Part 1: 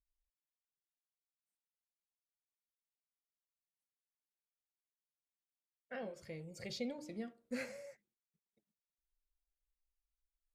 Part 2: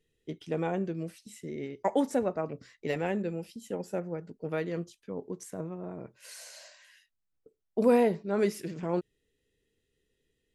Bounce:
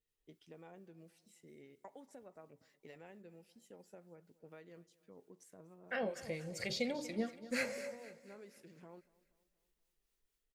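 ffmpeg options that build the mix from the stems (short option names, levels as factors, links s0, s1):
-filter_complex "[0:a]dynaudnorm=f=170:g=3:m=2.66,acrossover=split=1000[s0][s1];[s0]aeval=exprs='val(0)*(1-0.5/2+0.5/2*cos(2*PI*4.3*n/s))':c=same[s2];[s1]aeval=exprs='val(0)*(1-0.5/2-0.5/2*cos(2*PI*4.3*n/s))':c=same[s3];[s2][s3]amix=inputs=2:normalize=0,volume=1.26,asplit=3[s4][s5][s6];[s5]volume=0.168[s7];[1:a]acompressor=threshold=0.0224:ratio=6,volume=0.158,asplit=2[s8][s9];[s9]volume=0.0794[s10];[s6]apad=whole_len=464845[s11];[s8][s11]sidechaincompress=threshold=0.00708:ratio=8:attack=16:release=102[s12];[s7][s10]amix=inputs=2:normalize=0,aecho=0:1:238|476|714|952|1190|1428|1666:1|0.5|0.25|0.125|0.0625|0.0312|0.0156[s13];[s4][s12][s13]amix=inputs=3:normalize=0,lowshelf=f=470:g=-5"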